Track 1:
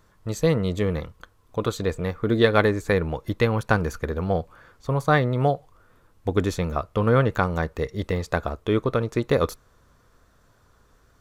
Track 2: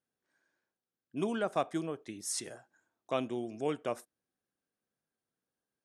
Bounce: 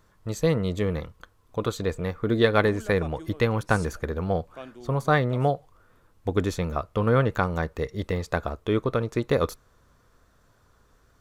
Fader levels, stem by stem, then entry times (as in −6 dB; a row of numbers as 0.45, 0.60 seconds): −2.0, −8.5 decibels; 0.00, 1.45 seconds